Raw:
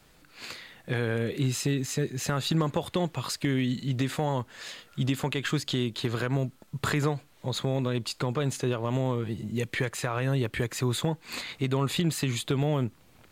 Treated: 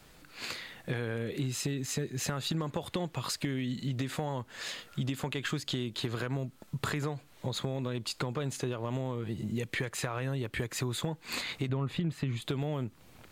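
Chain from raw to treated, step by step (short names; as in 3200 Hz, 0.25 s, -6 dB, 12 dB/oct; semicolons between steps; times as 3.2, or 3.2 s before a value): 11.69–12.42 tone controls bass +6 dB, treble -14 dB; compressor 4:1, threshold -33 dBFS, peak gain reduction 12.5 dB; gain +2 dB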